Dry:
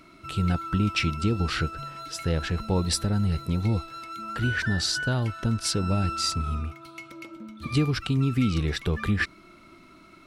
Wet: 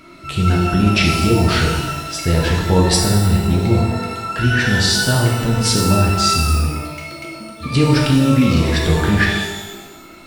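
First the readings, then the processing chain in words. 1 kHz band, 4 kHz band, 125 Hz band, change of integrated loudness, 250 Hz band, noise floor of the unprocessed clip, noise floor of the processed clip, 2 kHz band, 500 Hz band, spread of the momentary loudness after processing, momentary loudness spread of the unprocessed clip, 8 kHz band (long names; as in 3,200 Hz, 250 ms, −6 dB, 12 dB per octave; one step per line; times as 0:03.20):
+12.0 dB, +11.0 dB, +10.5 dB, +11.0 dB, +11.0 dB, −52 dBFS, −39 dBFS, +11.0 dB, +13.5 dB, 12 LU, 12 LU, +12.0 dB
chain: reverb with rising layers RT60 1.1 s, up +12 semitones, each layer −8 dB, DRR −1.5 dB
level +7 dB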